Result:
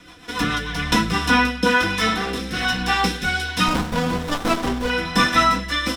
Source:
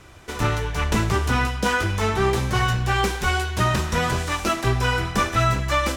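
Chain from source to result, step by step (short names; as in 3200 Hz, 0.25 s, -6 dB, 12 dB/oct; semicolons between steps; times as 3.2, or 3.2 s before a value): 2.07–2.65 hard clip -21 dBFS, distortion -17 dB; comb 4 ms, depth 83%; rotary speaker horn 7 Hz, later 1.2 Hz, at 0.42; graphic EQ 250/500/1000/2000/4000 Hz -4/-6/-6/-4/+10 dB; reverb RT60 0.15 s, pre-delay 3 ms, DRR 4 dB; 3.68–4.9 running maximum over 17 samples; gain +1 dB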